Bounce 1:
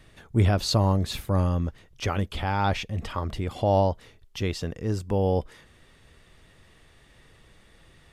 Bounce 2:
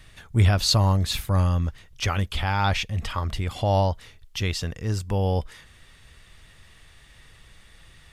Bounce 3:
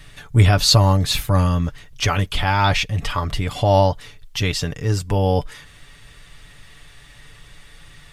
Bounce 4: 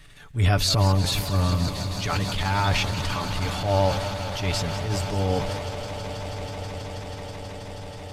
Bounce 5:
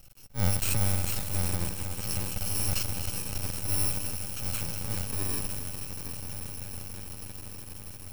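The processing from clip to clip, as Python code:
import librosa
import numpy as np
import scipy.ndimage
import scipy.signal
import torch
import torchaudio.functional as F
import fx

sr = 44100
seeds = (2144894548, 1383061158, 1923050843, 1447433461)

y1 = fx.peak_eq(x, sr, hz=360.0, db=-10.5, octaves=2.7)
y1 = F.gain(torch.from_numpy(y1), 6.5).numpy()
y2 = y1 + 0.51 * np.pad(y1, (int(6.9 * sr / 1000.0), 0))[:len(y1)]
y2 = F.gain(torch.from_numpy(y2), 5.5).numpy()
y3 = fx.echo_swell(y2, sr, ms=161, loudest=8, wet_db=-18.0)
y3 = fx.transient(y3, sr, attack_db=-10, sustain_db=4)
y3 = fx.echo_warbled(y3, sr, ms=184, feedback_pct=75, rate_hz=2.8, cents=143, wet_db=-13.0)
y3 = F.gain(torch.from_numpy(y3), -5.5).numpy()
y4 = fx.bit_reversed(y3, sr, seeds[0], block=64)
y4 = np.maximum(y4, 0.0)
y4 = y4 + 10.0 ** (-13.5 / 20.0) * np.pad(y4, (int(268 * sr / 1000.0), 0))[:len(y4)]
y4 = F.gain(torch.from_numpy(y4), -2.0).numpy()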